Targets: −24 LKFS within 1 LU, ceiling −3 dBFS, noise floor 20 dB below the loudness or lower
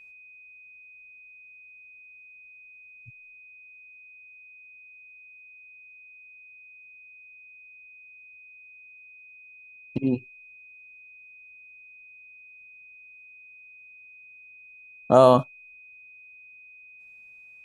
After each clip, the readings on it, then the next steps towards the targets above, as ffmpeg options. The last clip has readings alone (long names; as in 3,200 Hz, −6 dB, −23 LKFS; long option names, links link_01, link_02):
interfering tone 2,500 Hz; level of the tone −47 dBFS; integrated loudness −21.0 LKFS; sample peak −3.0 dBFS; target loudness −24.0 LKFS
→ -af "bandreject=frequency=2500:width=30"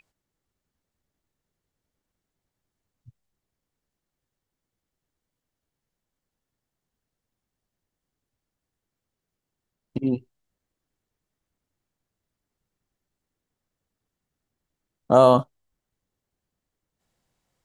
interfering tone none found; integrated loudness −20.0 LKFS; sample peak −3.0 dBFS; target loudness −24.0 LKFS
→ -af "volume=-4dB"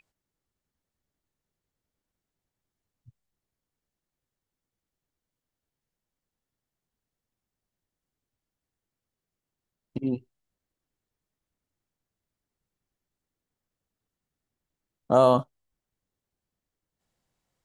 integrated loudness −24.0 LKFS; sample peak −7.0 dBFS; background noise floor −89 dBFS